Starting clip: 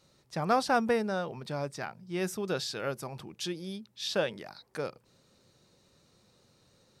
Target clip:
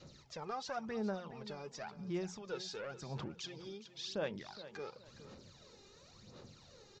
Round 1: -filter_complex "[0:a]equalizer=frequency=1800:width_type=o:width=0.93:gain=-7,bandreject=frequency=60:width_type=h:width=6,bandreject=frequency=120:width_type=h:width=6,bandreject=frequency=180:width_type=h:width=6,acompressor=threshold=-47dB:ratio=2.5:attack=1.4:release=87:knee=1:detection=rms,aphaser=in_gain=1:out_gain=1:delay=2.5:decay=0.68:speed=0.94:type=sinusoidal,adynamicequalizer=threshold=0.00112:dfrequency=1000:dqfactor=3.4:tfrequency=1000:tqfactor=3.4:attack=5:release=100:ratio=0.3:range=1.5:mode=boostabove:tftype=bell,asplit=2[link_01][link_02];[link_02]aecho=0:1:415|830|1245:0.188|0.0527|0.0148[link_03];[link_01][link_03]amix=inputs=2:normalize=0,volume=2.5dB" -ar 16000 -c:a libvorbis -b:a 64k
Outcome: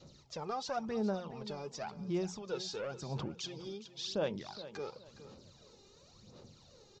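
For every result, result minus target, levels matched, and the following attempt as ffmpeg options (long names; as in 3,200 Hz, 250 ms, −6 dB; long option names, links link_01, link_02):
downward compressor: peak gain reduction −5 dB; 2,000 Hz band −4.0 dB
-filter_complex "[0:a]equalizer=frequency=1800:width_type=o:width=0.93:gain=-7,bandreject=frequency=60:width_type=h:width=6,bandreject=frequency=120:width_type=h:width=6,bandreject=frequency=180:width_type=h:width=6,acompressor=threshold=-53.5dB:ratio=2.5:attack=1.4:release=87:knee=1:detection=rms,aphaser=in_gain=1:out_gain=1:delay=2.5:decay=0.68:speed=0.94:type=sinusoidal,adynamicequalizer=threshold=0.00112:dfrequency=1000:dqfactor=3.4:tfrequency=1000:tqfactor=3.4:attack=5:release=100:ratio=0.3:range=1.5:mode=boostabove:tftype=bell,asplit=2[link_01][link_02];[link_02]aecho=0:1:415|830|1245:0.188|0.0527|0.0148[link_03];[link_01][link_03]amix=inputs=2:normalize=0,volume=2.5dB" -ar 16000 -c:a libvorbis -b:a 64k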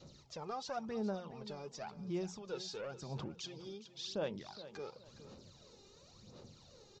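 2,000 Hz band −4.0 dB
-filter_complex "[0:a]bandreject=frequency=60:width_type=h:width=6,bandreject=frequency=120:width_type=h:width=6,bandreject=frequency=180:width_type=h:width=6,acompressor=threshold=-53.5dB:ratio=2.5:attack=1.4:release=87:knee=1:detection=rms,aphaser=in_gain=1:out_gain=1:delay=2.5:decay=0.68:speed=0.94:type=sinusoidal,adynamicequalizer=threshold=0.00112:dfrequency=1000:dqfactor=3.4:tfrequency=1000:tqfactor=3.4:attack=5:release=100:ratio=0.3:range=1.5:mode=boostabove:tftype=bell,asplit=2[link_01][link_02];[link_02]aecho=0:1:415|830|1245:0.188|0.0527|0.0148[link_03];[link_01][link_03]amix=inputs=2:normalize=0,volume=2.5dB" -ar 16000 -c:a libvorbis -b:a 64k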